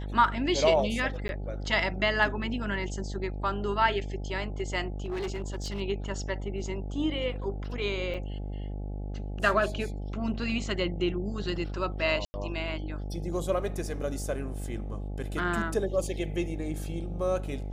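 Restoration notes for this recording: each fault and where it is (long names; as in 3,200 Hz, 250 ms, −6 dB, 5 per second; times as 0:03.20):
mains buzz 50 Hz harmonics 17 −35 dBFS
0:01.28–0:01.29: drop-out 11 ms
0:05.04–0:05.81: clipping −29 dBFS
0:08.14–0:08.15: drop-out 5.8 ms
0:12.25–0:12.34: drop-out 90 ms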